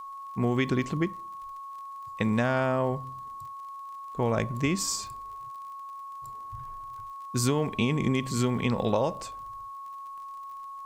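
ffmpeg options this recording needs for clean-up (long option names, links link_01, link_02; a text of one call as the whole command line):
ffmpeg -i in.wav -af "adeclick=threshold=4,bandreject=frequency=1100:width=30,agate=range=-21dB:threshold=-33dB" out.wav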